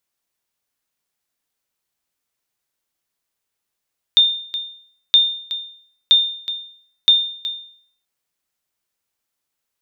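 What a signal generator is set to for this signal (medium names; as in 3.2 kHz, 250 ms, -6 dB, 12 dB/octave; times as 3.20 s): sonar ping 3.62 kHz, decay 0.58 s, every 0.97 s, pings 4, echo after 0.37 s, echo -13 dB -5 dBFS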